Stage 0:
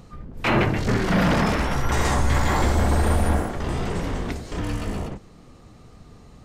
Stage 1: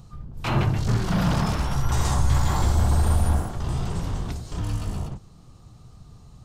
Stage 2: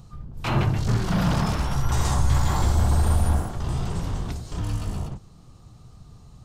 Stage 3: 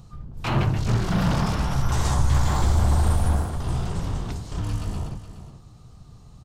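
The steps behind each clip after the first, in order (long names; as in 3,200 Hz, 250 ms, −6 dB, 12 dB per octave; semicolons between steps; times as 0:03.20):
octave-band graphic EQ 125/250/500/2,000 Hz +5/−7/−8/−11 dB
no processing that can be heard
single-tap delay 418 ms −12 dB; highs frequency-modulated by the lows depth 0.2 ms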